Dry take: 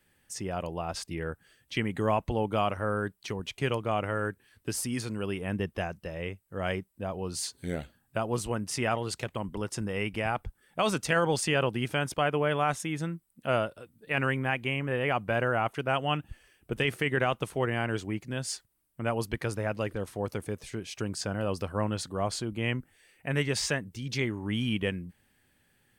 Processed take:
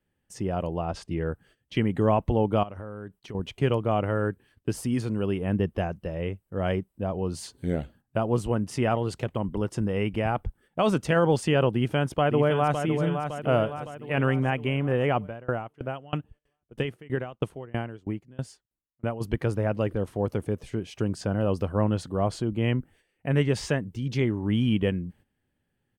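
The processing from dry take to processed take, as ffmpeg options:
-filter_complex "[0:a]asettb=1/sr,asplit=3[s0][s1][s2];[s0]atrim=end=0.834[s3];[s1]atrim=start=0.83:end=1.26,asetpts=PTS-STARTPTS,afade=t=in:d=0.004:c=qsin,afade=t=out:st=0.426:d=0.004:c=qsin,lowpass=8800[s4];[s2]atrim=start=1.256[s5];[s3][s4]acrossfade=d=0.004:c1=hsin:c2=qsin[s6];[s6][s5]acrossfade=d=0.004:c1=qsin:c2=hsin,asettb=1/sr,asplit=3[s7][s8][s9];[s7]atrim=end=2.634[s10];[s8]atrim=start=2.63:end=3.35,asetpts=PTS-STARTPTS,afade=t=in:d=0.004:c=qsin,afade=t=out:st=0.716:d=0.004:c=qsin,acompressor=threshold=0.01:ratio=6:attack=3.2:release=140:knee=1:detection=peak[s11];[s9]atrim=start=3.346[s12];[s10][s11]acrossfade=d=0.004:c1=hsin:c2=qsin[s13];[s13][s12]acrossfade=d=0.004:c1=qsin:c2=hsin,asplit=2[s14][s15];[s15]afade=t=in:st=11.74:d=0.01,afade=t=out:st=12.82:d=0.01,aecho=0:1:560|1120|1680|2240|2800|3360|3920:0.446684|0.245676|0.135122|0.074317|0.0408743|0.0224809|0.0123645[s16];[s14][s16]amix=inputs=2:normalize=0,asplit=3[s17][s18][s19];[s17]afade=t=out:st=15.26:d=0.02[s20];[s18]aeval=exprs='val(0)*pow(10,-27*if(lt(mod(3.1*n/s,1),2*abs(3.1)/1000),1-mod(3.1*n/s,1)/(2*abs(3.1)/1000),(mod(3.1*n/s,1)-2*abs(3.1)/1000)/(1-2*abs(3.1)/1000))/20)':c=same,afade=t=in:st=15.26:d=0.02,afade=t=out:st=19.2:d=0.02[s21];[s19]afade=t=in:st=19.2:d=0.02[s22];[s20][s21][s22]amix=inputs=3:normalize=0,equalizer=f=3000:t=o:w=0.29:g=4.5,agate=range=0.251:threshold=0.00141:ratio=16:detection=peak,tiltshelf=f=1300:g=7"

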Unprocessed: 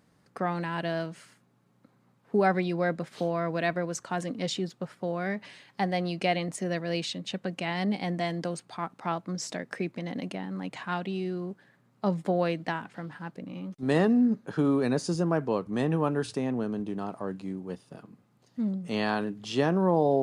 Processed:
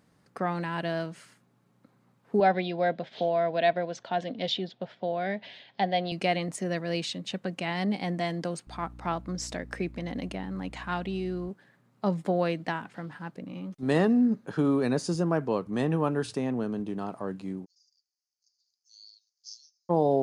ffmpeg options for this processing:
-filter_complex "[0:a]asettb=1/sr,asplit=3[s0][s1][s2];[s0]atrim=end=2.404[s3];[s1]atrim=start=2.4:end=6.12,asetpts=PTS-STARTPTS,afade=t=in:d=0.004:c=qsin,afade=t=out:st=3.716:d=0.004:c=qsin,highpass=110,equalizer=f=160:t=q:w=4:g=-6,equalizer=f=320:t=q:w=4:g=-5,equalizer=f=670:t=q:w=4:g=8,equalizer=f=1200:t=q:w=4:g=-10,equalizer=f=3400:t=q:w=4:g=9,lowpass=f=4800:w=0.5412,lowpass=f=4800:w=1.3066[s4];[s2]atrim=start=6.116[s5];[s3][s4]acrossfade=d=0.004:c1=hsin:c2=qsin[s6];[s6][s5]acrossfade=d=0.004:c1=qsin:c2=hsin,asettb=1/sr,asplit=3[s7][s8][s9];[s7]atrim=end=8.674[s10];[s8]atrim=start=8.67:end=11.49,asetpts=PTS-STARTPTS,afade=t=in:d=0.004:c=qsin,afade=t=out:st=2.816:d=0.004:c=qsin,aeval=exprs='val(0)+0.00562*(sin(2*PI*60*n/s)+sin(2*PI*2*60*n/s)/2+sin(2*PI*3*60*n/s)/3+sin(2*PI*4*60*n/s)/4+sin(2*PI*5*60*n/s)/5)':c=same[s11];[s9]atrim=start=11.486[s12];[s10][s11]acrossfade=d=0.004:c1=hsin:c2=qsin[s13];[s13][s12]acrossfade=d=0.004:c1=qsin:c2=hsin,asplit=3[s14][s15][s16];[s14]afade=t=out:st=17.64:d=0.02[s17];[s15]asuperpass=centerf=5500:order=8:qfactor=2.7,afade=t=in:st=17.64:d=0.02,afade=t=out:st=19.89:d=0.02[s18];[s16]afade=t=in:st=19.89:d=0.02[s19];[s17][s18][s19]amix=inputs=3:normalize=0"

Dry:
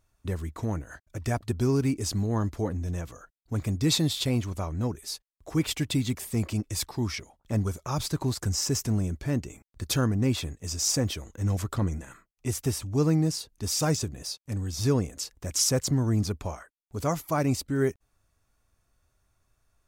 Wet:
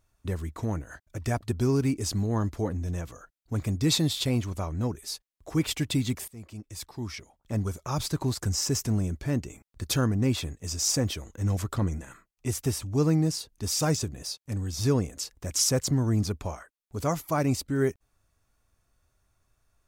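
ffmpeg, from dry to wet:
-filter_complex "[0:a]asplit=2[s0][s1];[s0]atrim=end=6.28,asetpts=PTS-STARTPTS,afade=t=out:st=6.276:d=0.004:c=hsin:silence=0.0944061[s2];[s1]atrim=start=6.28,asetpts=PTS-STARTPTS,afade=t=in:d=1.68:silence=0.0944061[s3];[s2][s3]concat=n=2:v=0:a=1"

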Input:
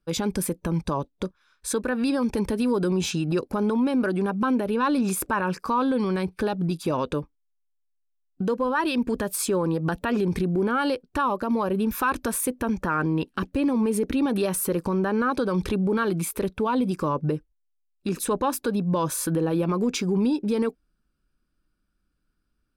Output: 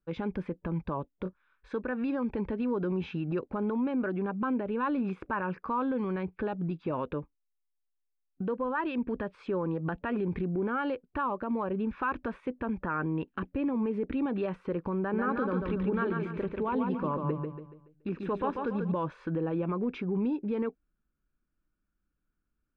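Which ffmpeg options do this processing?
-filter_complex "[0:a]asettb=1/sr,asplit=3[s0][s1][s2];[s0]atrim=end=1.234[s3];[s1]atrim=start=1.23:end=1.72,asetpts=PTS-STARTPTS,afade=t=in:d=0.004:c=qsin,afade=t=out:st=0.486:d=0.004:c=qsin,asplit=2[s4][s5];[s5]adelay=22,volume=0.562[s6];[s4][s6]amix=inputs=2:normalize=0,atrim=end_sample=21609[s7];[s2]atrim=start=1.716[s8];[s3][s7]acrossfade=d=0.004:c1=hsin:c2=qsin[s9];[s9][s8]acrossfade=d=0.004:c1=qsin:c2=hsin,asettb=1/sr,asplit=3[s10][s11][s12];[s10]atrim=end=14.994[s13];[s11]atrim=start=14.99:end=18.92,asetpts=PTS-STARTPTS,afade=t=in:d=0.004:c=qsin,afade=t=out:st=3.926:d=0.004:c=qsin,aecho=1:1:142|284|426|568|710:0.596|0.238|0.0953|0.0381|0.0152,atrim=end_sample=173313[s14];[s12]atrim=start=18.916[s15];[s13][s14]acrossfade=d=0.004:c1=hsin:c2=qsin[s16];[s16][s15]acrossfade=d=0.004:c1=qsin:c2=hsin,lowpass=f=2600:w=0.5412,lowpass=f=2600:w=1.3066,volume=0.447"

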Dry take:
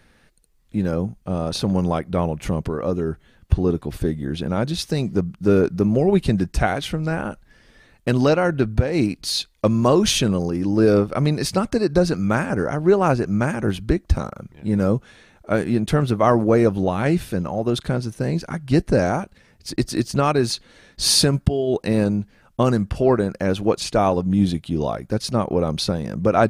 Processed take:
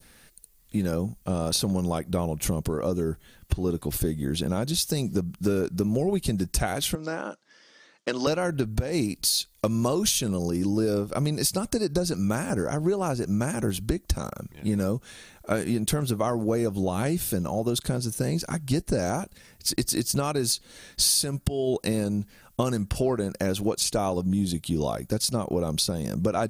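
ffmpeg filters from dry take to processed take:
-filter_complex "[0:a]asettb=1/sr,asplit=3[s0][s1][s2];[s0]atrim=end=6.954[s3];[s1]atrim=start=6.95:end=8.27,asetpts=PTS-STARTPTS,afade=t=in:d=0.004:c=qsin,afade=t=out:st=1.316:d=0.004:c=qsin,highpass=f=240:w=0.5412,highpass=f=240:w=1.3066,equalizer=f=240:t=q:w=4:g=-9,equalizer=f=400:t=q:w=4:g=-6,equalizer=f=740:t=q:w=4:g=-6,equalizer=f=1700:t=q:w=4:g=-3,equalizer=f=2500:t=q:w=4:g=-6,equalizer=f=4000:t=q:w=4:g=-5,lowpass=f=5800:w=0.5412,lowpass=f=5800:w=1.3066[s4];[s2]atrim=start=8.266[s5];[s3][s4]acrossfade=d=0.004:c1=hsin:c2=qsin[s6];[s6][s5]acrossfade=d=0.004:c1=qsin:c2=hsin,aemphasis=mode=production:type=75fm,acompressor=threshold=0.0891:ratio=6,adynamicequalizer=threshold=0.00631:dfrequency=1900:dqfactor=0.72:tfrequency=1900:tqfactor=0.72:attack=5:release=100:ratio=0.375:range=3:mode=cutabove:tftype=bell"

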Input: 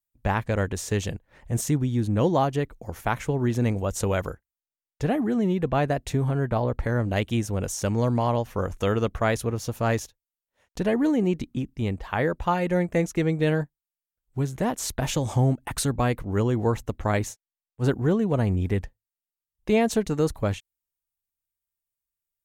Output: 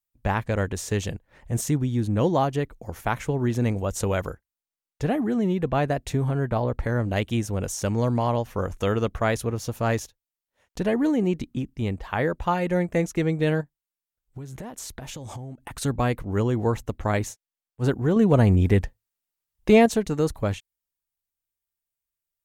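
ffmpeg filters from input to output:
-filter_complex "[0:a]asplit=3[s0][s1][s2];[s0]afade=t=out:st=13.6:d=0.02[s3];[s1]acompressor=threshold=0.0224:ratio=10:attack=3.2:release=140:knee=1:detection=peak,afade=t=in:st=13.6:d=0.02,afade=t=out:st=15.81:d=0.02[s4];[s2]afade=t=in:st=15.81:d=0.02[s5];[s3][s4][s5]amix=inputs=3:normalize=0,asettb=1/sr,asplit=3[s6][s7][s8];[s6]atrim=end=18.164[s9];[s7]atrim=start=18.16:end=19.86,asetpts=PTS-STARTPTS,afade=t=in:d=0.004:c=qsin,afade=t=out:st=1.696:d=0.004:c=qsin,acontrast=54[s10];[s8]atrim=start=19.856[s11];[s9][s10]acrossfade=d=0.004:c1=hsin:c2=qsin[s12];[s12][s11]acrossfade=d=0.004:c1=qsin:c2=hsin"

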